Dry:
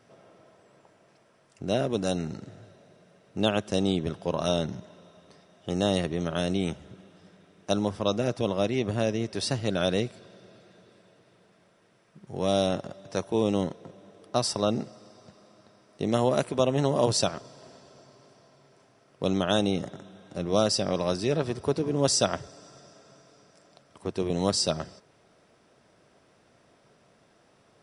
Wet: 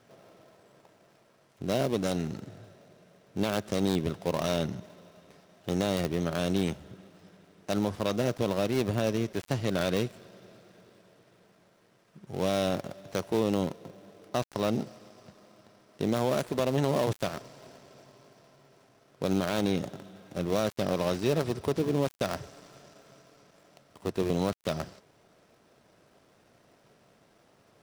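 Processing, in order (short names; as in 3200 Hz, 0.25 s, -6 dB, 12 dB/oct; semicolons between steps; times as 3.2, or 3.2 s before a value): switching dead time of 0.16 ms; limiter -15.5 dBFS, peak gain reduction 7.5 dB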